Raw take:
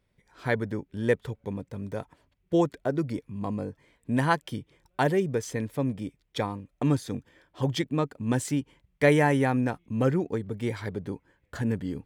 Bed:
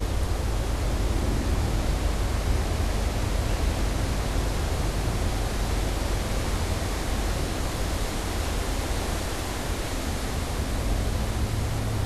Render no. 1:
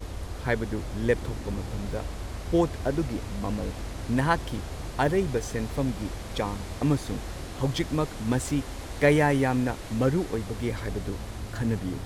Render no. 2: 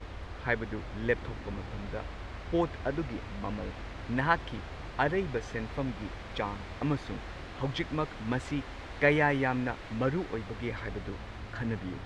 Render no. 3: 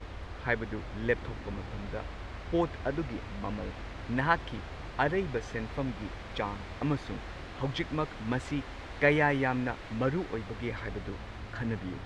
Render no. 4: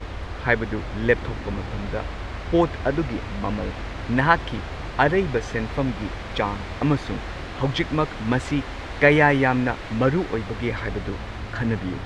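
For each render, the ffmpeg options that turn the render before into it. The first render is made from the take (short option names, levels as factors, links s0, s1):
-filter_complex "[1:a]volume=0.335[s0];[0:a][s0]amix=inputs=2:normalize=0"
-af "lowpass=2100,tiltshelf=f=1300:g=-7"
-af anull
-af "volume=2.99,alimiter=limit=0.794:level=0:latency=1"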